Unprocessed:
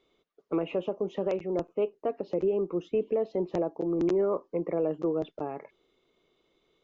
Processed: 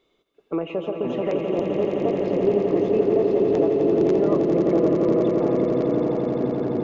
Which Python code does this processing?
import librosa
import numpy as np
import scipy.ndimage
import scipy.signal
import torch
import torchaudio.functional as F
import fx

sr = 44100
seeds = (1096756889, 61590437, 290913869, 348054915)

y = fx.echo_pitch(x, sr, ms=345, semitones=-5, count=2, db_per_echo=-6.0)
y = fx.brickwall_bandstop(y, sr, low_hz=1300.0, high_hz=3400.0, at=(1.56, 2.16))
y = fx.echo_swell(y, sr, ms=86, loudest=8, wet_db=-8.0)
y = F.gain(torch.from_numpy(y), 3.0).numpy()